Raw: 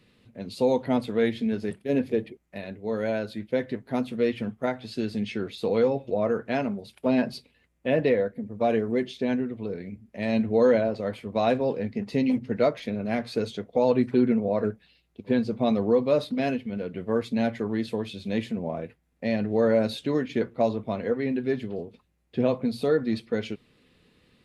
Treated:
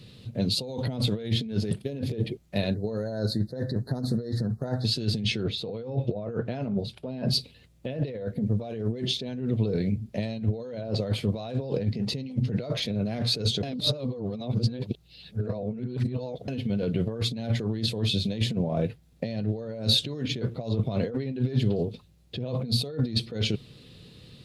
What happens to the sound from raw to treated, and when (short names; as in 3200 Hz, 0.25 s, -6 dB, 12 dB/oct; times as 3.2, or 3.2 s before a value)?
2.74–4.85 elliptic band-stop 1800–4100 Hz
5.43–7.28 LPF 2200 Hz 6 dB/oct
13.63–16.48 reverse
whole clip: limiter -16.5 dBFS; negative-ratio compressor -34 dBFS, ratio -1; ten-band EQ 125 Hz +10 dB, 250 Hz -4 dB, 1000 Hz -5 dB, 2000 Hz -8 dB, 4000 Hz +7 dB; gain +4 dB